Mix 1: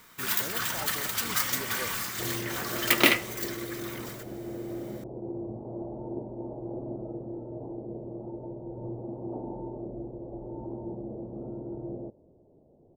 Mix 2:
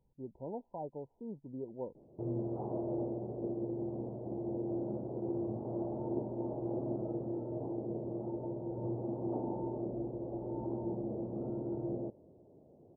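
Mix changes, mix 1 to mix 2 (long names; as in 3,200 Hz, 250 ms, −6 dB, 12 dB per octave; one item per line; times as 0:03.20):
first sound: muted
second sound: add high-pass filter 74 Hz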